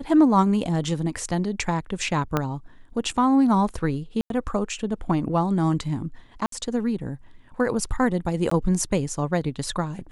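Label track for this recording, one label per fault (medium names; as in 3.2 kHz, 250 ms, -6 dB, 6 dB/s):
2.370000	2.370000	pop -9 dBFS
4.210000	4.300000	dropout 92 ms
6.460000	6.520000	dropout 63 ms
8.500000	8.510000	dropout 14 ms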